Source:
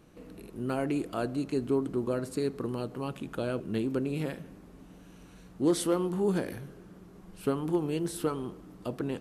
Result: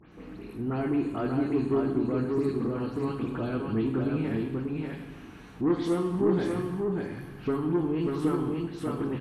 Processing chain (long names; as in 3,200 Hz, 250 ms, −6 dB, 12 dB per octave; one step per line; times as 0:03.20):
every frequency bin delayed by itself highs late, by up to 114 ms
high-pass filter 220 Hz 6 dB per octave
spectral tilt −3.5 dB per octave
notch filter 540 Hz, Q 12
soft clipping −18.5 dBFS, distortion −18 dB
graphic EQ with 10 bands 500 Hz −4 dB, 2,000 Hz +4 dB, 8,000 Hz −4 dB
on a send: single-tap delay 589 ms −3.5 dB
on the sum: reverb whose tail is shaped and stops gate 360 ms falling, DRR 4 dB
one half of a high-frequency compander encoder only